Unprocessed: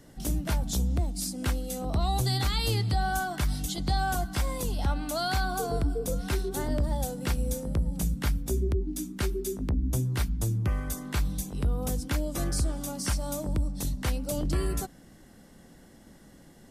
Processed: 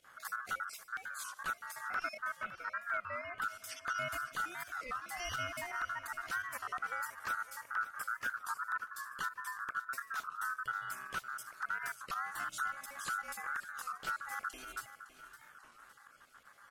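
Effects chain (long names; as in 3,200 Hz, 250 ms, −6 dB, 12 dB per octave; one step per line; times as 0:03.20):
time-frequency cells dropped at random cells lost 37%
0:02.17–0:03.42: low-pass filter 1,000 Hz 12 dB per octave
in parallel at −2 dB: downward compressor 12 to 1, threshold −44 dBFS, peak gain reduction 22 dB
on the sum: wave folding −18.5 dBFS
fake sidechain pumping 84 BPM, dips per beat 2, −10 dB, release 68 ms
ring modulation 1,400 Hz
on a send: repeating echo 560 ms, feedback 49%, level −14 dB
on the sum: wow of a warped record 33 1/3 rpm, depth 160 cents
level −8 dB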